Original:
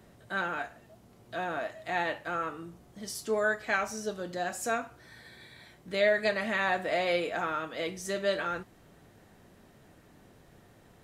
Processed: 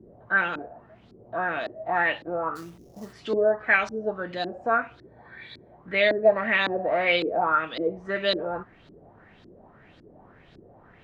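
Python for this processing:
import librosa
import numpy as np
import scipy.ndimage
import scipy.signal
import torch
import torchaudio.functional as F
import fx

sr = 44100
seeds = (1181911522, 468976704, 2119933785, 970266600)

y = fx.filter_lfo_lowpass(x, sr, shape='saw_up', hz=1.8, low_hz=300.0, high_hz=4400.0, q=3.8)
y = fx.sample_hold(y, sr, seeds[0], rate_hz=6100.0, jitter_pct=20, at=(2.55, 3.12), fade=0.02)
y = y * 10.0 ** (2.5 / 20.0)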